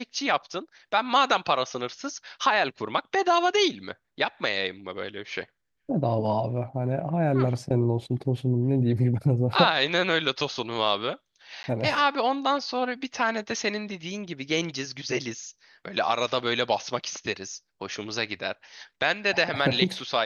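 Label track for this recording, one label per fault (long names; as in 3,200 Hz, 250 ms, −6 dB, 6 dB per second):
11.630000	11.640000	drop-out 10 ms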